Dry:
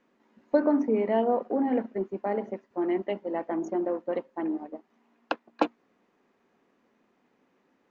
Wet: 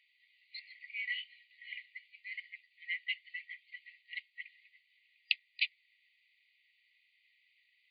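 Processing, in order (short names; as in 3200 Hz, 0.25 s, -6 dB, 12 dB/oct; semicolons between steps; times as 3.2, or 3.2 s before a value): FFT band-pass 1900–4800 Hz; gain +9.5 dB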